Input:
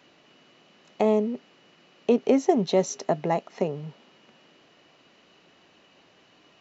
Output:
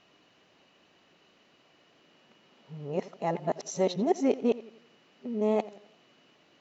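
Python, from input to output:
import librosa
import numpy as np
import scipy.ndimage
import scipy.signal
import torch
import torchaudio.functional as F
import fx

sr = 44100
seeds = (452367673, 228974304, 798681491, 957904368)

y = x[::-1].copy()
y = fx.echo_warbled(y, sr, ms=87, feedback_pct=44, rate_hz=2.8, cents=86, wet_db=-18)
y = y * librosa.db_to_amplitude(-5.0)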